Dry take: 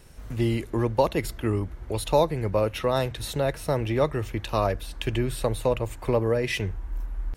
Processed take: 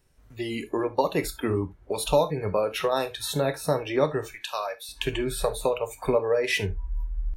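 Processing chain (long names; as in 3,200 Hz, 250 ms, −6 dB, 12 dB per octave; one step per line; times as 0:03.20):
downward compressor 2 to 1, threshold −25 dBFS, peak gain reduction 6 dB
0:04.34–0:04.89: high-pass filter 1,300 Hz 6 dB per octave
noise reduction from a noise print of the clip's start 19 dB
reverb whose tail is shaped and stops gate 100 ms falling, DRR 7.5 dB
level +3.5 dB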